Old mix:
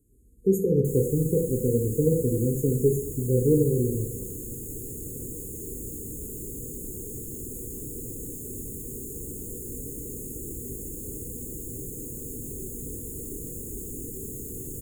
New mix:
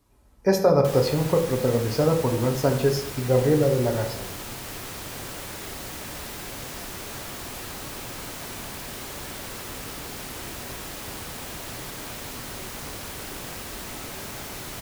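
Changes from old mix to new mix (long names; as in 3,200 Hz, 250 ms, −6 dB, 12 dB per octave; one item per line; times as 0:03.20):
background: send −8.0 dB
master: remove linear-phase brick-wall band-stop 510–6,500 Hz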